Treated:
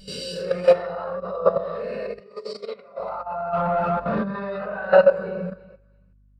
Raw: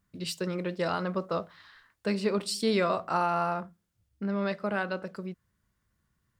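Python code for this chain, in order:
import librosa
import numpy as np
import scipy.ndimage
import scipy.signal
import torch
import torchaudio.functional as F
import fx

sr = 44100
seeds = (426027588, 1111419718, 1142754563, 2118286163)

y = fx.spec_swells(x, sr, rise_s=1.11)
y = fx.echo_thinned(y, sr, ms=336, feedback_pct=27, hz=840.0, wet_db=-11.0)
y = fx.room_shoebox(y, sr, seeds[0], volume_m3=530.0, walls='mixed', distance_m=7.9)
y = fx.over_compress(y, sr, threshold_db=-15.0, ratio=-0.5)
y = fx.low_shelf_res(y, sr, hz=410.0, db=-6.0, q=3.0)
y = fx.level_steps(y, sr, step_db=12)
y = fx.add_hum(y, sr, base_hz=50, snr_db=21)
y = fx.bandpass_edges(y, sr, low_hz=180.0, high_hz=6400.0, at=(2.2, 2.99))
y = fx.leveller(y, sr, passes=2, at=(3.53, 4.23))
y = fx.spectral_expand(y, sr, expansion=1.5)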